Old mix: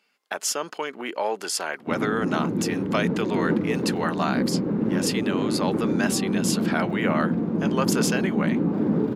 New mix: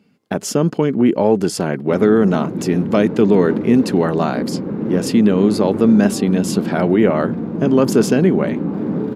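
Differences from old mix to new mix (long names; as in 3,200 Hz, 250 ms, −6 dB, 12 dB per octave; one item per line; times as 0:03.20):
speech: remove high-pass filter 1,000 Hz 12 dB per octave
reverb: on, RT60 1.0 s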